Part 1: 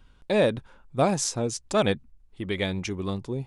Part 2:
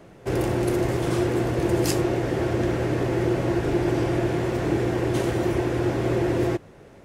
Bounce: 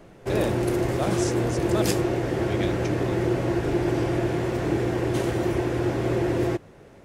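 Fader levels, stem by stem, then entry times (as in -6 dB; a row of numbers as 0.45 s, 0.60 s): -6.5 dB, -1.0 dB; 0.00 s, 0.00 s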